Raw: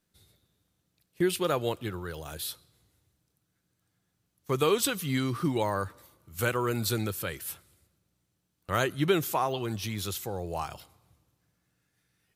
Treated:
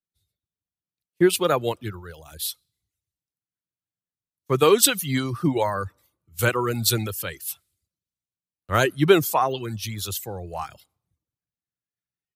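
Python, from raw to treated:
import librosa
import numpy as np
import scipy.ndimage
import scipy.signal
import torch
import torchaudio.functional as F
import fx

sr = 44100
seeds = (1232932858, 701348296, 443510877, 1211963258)

y = fx.dereverb_blind(x, sr, rt60_s=0.67)
y = fx.band_widen(y, sr, depth_pct=70)
y = y * librosa.db_to_amplitude(6.0)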